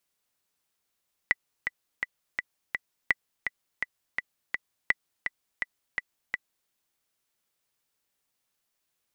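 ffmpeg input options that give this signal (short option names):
-f lavfi -i "aevalsrc='pow(10,(-8-7*gte(mod(t,5*60/167),60/167))/20)*sin(2*PI*1980*mod(t,60/167))*exp(-6.91*mod(t,60/167)/0.03)':d=5.38:s=44100"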